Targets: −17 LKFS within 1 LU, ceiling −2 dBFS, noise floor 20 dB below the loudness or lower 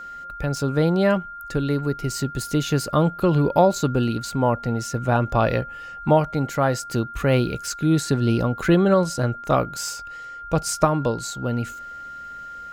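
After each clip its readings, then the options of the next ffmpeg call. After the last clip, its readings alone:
interfering tone 1,400 Hz; level of the tone −34 dBFS; integrated loudness −22.0 LKFS; sample peak −3.0 dBFS; target loudness −17.0 LKFS
→ -af "bandreject=frequency=1400:width=30"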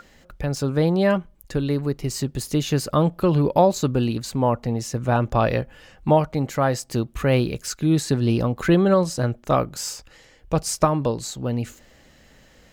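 interfering tone none found; integrated loudness −22.5 LKFS; sample peak −3.0 dBFS; target loudness −17.0 LKFS
→ -af "volume=5.5dB,alimiter=limit=-2dB:level=0:latency=1"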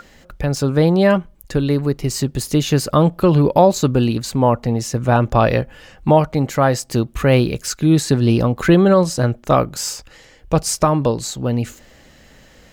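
integrated loudness −17.0 LKFS; sample peak −2.0 dBFS; background noise floor −48 dBFS

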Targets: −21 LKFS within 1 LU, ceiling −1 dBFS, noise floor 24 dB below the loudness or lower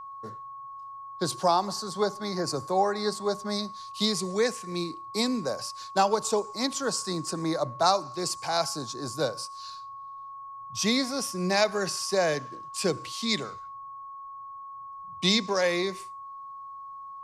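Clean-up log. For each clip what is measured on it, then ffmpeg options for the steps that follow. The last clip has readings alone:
interfering tone 1,100 Hz; level of the tone −39 dBFS; integrated loudness −28.0 LKFS; sample peak −8.5 dBFS; target loudness −21.0 LKFS
→ -af "bandreject=frequency=1100:width=30"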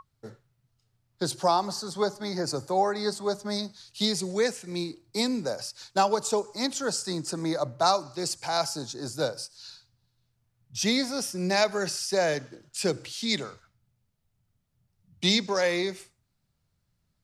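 interfering tone none found; integrated loudness −28.0 LKFS; sample peak −9.0 dBFS; target loudness −21.0 LKFS
→ -af "volume=7dB"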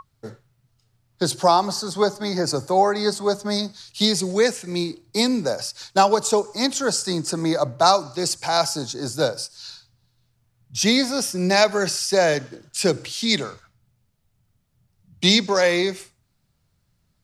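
integrated loudness −21.0 LKFS; sample peak −2.0 dBFS; background noise floor −68 dBFS

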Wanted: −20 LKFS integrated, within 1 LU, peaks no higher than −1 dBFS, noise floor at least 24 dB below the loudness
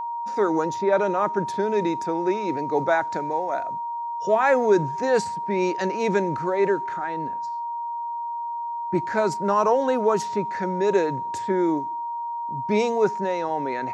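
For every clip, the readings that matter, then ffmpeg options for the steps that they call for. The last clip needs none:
interfering tone 940 Hz; level of the tone −27 dBFS; integrated loudness −24.0 LKFS; sample peak −8.5 dBFS; target loudness −20.0 LKFS
→ -af "bandreject=frequency=940:width=30"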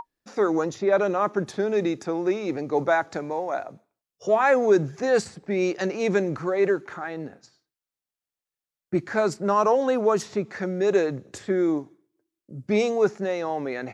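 interfering tone none found; integrated loudness −24.5 LKFS; sample peak −9.0 dBFS; target loudness −20.0 LKFS
→ -af "volume=4.5dB"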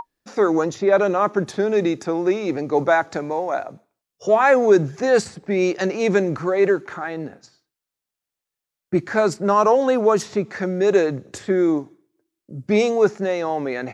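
integrated loudness −20.0 LKFS; sample peak −4.5 dBFS; background noise floor −86 dBFS

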